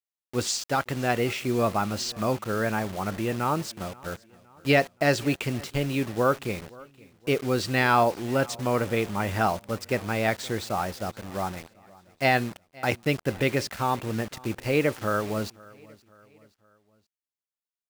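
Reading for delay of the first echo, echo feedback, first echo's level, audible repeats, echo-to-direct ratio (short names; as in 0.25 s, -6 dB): 0.523 s, 47%, -23.0 dB, 2, -22.0 dB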